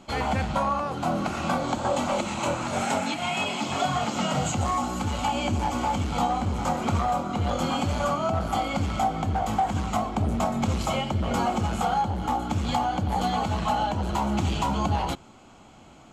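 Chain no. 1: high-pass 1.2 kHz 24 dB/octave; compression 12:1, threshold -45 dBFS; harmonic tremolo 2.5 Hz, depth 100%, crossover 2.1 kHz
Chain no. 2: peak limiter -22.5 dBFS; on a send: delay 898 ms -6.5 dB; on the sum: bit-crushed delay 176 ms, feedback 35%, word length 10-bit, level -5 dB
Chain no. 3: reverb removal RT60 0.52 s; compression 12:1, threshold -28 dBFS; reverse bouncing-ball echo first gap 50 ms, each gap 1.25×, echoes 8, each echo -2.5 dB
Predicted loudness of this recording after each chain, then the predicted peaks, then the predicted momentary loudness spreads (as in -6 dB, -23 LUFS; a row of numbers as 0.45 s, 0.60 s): -52.0 LUFS, -29.0 LUFS, -29.5 LUFS; -35.5 dBFS, -16.0 dBFS, -15.5 dBFS; 3 LU, 1 LU, 2 LU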